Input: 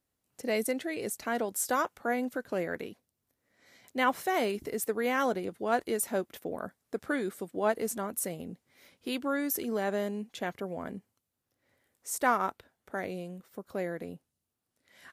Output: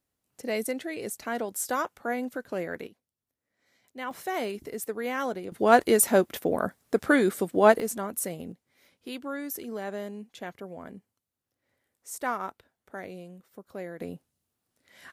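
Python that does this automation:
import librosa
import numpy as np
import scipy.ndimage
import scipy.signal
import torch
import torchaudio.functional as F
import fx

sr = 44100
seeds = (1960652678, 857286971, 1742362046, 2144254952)

y = fx.gain(x, sr, db=fx.steps((0.0, 0.0), (2.87, -9.0), (4.11, -2.0), (5.52, 10.0), (7.8, 2.0), (8.52, -4.0), (14.0, 4.0)))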